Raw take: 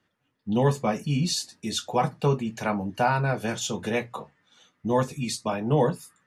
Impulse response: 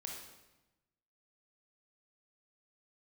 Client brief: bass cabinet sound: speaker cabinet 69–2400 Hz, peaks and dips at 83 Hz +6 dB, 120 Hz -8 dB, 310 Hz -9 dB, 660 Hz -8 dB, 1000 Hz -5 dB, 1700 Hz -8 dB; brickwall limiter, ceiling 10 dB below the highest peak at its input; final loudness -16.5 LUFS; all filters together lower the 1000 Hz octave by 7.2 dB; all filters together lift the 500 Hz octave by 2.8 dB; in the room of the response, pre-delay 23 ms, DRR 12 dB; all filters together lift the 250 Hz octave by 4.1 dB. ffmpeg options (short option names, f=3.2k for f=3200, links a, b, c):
-filter_complex "[0:a]equalizer=f=250:t=o:g=7,equalizer=f=500:t=o:g=6,equalizer=f=1k:t=o:g=-6.5,alimiter=limit=-16dB:level=0:latency=1,asplit=2[a][b];[1:a]atrim=start_sample=2205,adelay=23[c];[b][c]afir=irnorm=-1:irlink=0,volume=-10dB[d];[a][d]amix=inputs=2:normalize=0,highpass=f=69:w=0.5412,highpass=f=69:w=1.3066,equalizer=f=83:t=q:w=4:g=6,equalizer=f=120:t=q:w=4:g=-8,equalizer=f=310:t=q:w=4:g=-9,equalizer=f=660:t=q:w=4:g=-8,equalizer=f=1k:t=q:w=4:g=-5,equalizer=f=1.7k:t=q:w=4:g=-8,lowpass=f=2.4k:w=0.5412,lowpass=f=2.4k:w=1.3066,volume=12.5dB"